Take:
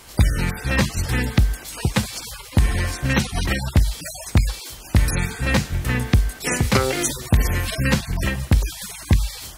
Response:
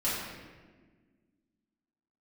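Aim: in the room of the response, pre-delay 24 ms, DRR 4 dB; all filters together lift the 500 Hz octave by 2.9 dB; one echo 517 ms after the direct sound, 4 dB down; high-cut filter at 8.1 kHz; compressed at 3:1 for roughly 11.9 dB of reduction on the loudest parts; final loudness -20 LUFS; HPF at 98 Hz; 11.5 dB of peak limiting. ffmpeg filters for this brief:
-filter_complex "[0:a]highpass=98,lowpass=8100,equalizer=f=500:t=o:g=3.5,acompressor=threshold=0.0282:ratio=3,alimiter=level_in=1.12:limit=0.0631:level=0:latency=1,volume=0.891,aecho=1:1:517:0.631,asplit=2[s0][s1];[1:a]atrim=start_sample=2205,adelay=24[s2];[s1][s2]afir=irnorm=-1:irlink=0,volume=0.237[s3];[s0][s3]amix=inputs=2:normalize=0,volume=4.47"

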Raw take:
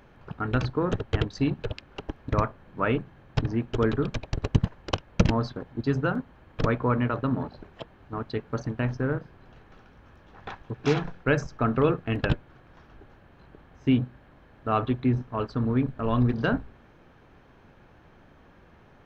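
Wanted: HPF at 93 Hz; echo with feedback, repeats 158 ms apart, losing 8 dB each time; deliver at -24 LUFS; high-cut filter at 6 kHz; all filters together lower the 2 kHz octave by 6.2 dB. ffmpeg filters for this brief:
-af "highpass=93,lowpass=6000,equalizer=f=2000:t=o:g=-9,aecho=1:1:158|316|474|632|790:0.398|0.159|0.0637|0.0255|0.0102,volume=1.68"

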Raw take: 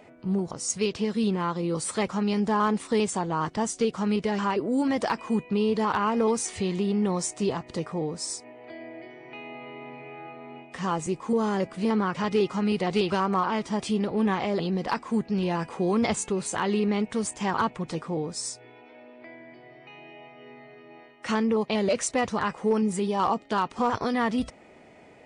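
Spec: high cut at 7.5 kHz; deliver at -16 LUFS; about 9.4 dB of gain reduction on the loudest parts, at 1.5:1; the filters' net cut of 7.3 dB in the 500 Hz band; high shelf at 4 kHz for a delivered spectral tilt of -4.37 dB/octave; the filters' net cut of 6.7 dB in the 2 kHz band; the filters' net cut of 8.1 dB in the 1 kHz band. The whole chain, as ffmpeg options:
-af "lowpass=7500,equalizer=f=500:t=o:g=-8,equalizer=f=1000:t=o:g=-6,equalizer=f=2000:t=o:g=-8,highshelf=f=4000:g=7,acompressor=threshold=0.00355:ratio=1.5,volume=12.6"

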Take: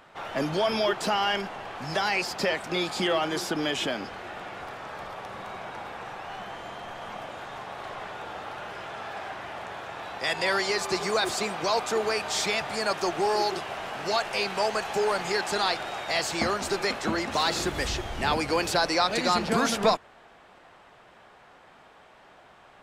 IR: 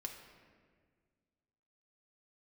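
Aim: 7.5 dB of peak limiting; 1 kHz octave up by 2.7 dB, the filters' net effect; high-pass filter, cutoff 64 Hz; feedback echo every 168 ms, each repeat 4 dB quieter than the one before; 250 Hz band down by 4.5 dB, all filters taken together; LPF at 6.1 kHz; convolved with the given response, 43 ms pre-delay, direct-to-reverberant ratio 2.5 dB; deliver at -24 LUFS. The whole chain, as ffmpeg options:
-filter_complex "[0:a]highpass=64,lowpass=6100,equalizer=f=250:t=o:g=-7,equalizer=f=1000:t=o:g=4,alimiter=limit=0.141:level=0:latency=1,aecho=1:1:168|336|504|672|840|1008|1176|1344|1512:0.631|0.398|0.25|0.158|0.0994|0.0626|0.0394|0.0249|0.0157,asplit=2[s0][s1];[1:a]atrim=start_sample=2205,adelay=43[s2];[s1][s2]afir=irnorm=-1:irlink=0,volume=1[s3];[s0][s3]amix=inputs=2:normalize=0,volume=1.12"

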